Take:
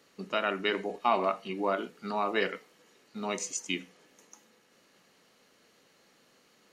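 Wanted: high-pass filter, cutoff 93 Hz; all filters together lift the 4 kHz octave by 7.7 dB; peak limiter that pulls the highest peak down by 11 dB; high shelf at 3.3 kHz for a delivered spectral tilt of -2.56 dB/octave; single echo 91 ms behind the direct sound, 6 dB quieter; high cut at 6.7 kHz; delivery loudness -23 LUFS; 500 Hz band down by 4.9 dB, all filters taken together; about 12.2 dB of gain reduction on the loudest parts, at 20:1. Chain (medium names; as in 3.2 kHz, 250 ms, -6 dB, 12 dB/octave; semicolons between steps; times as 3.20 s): high-pass 93 Hz; low-pass 6.7 kHz; peaking EQ 500 Hz -7 dB; treble shelf 3.3 kHz +5 dB; peaking EQ 4 kHz +8 dB; compression 20:1, threshold -34 dBFS; peak limiter -30 dBFS; delay 91 ms -6 dB; trim +19 dB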